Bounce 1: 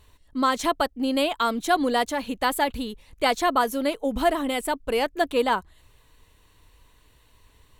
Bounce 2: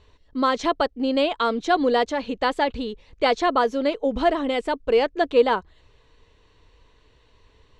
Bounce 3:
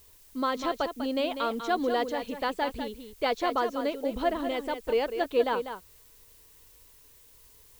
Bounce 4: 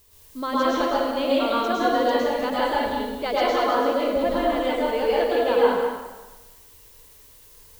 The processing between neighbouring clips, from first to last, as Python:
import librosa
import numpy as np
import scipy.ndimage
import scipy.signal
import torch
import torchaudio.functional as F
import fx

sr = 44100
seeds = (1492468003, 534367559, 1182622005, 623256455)

y1 = scipy.signal.sosfilt(scipy.signal.butter(4, 5800.0, 'lowpass', fs=sr, output='sos'), x)
y1 = fx.peak_eq(y1, sr, hz=450.0, db=7.0, octaves=0.64)
y2 = fx.dmg_noise_colour(y1, sr, seeds[0], colour='blue', level_db=-50.0)
y2 = y2 + 10.0 ** (-9.0 / 20.0) * np.pad(y2, (int(196 * sr / 1000.0), 0))[:len(y2)]
y2 = F.gain(torch.from_numpy(y2), -7.5).numpy()
y3 = fx.rev_plate(y2, sr, seeds[1], rt60_s=1.2, hf_ratio=0.75, predelay_ms=95, drr_db=-7.0)
y3 = F.gain(torch.from_numpy(y3), -1.0).numpy()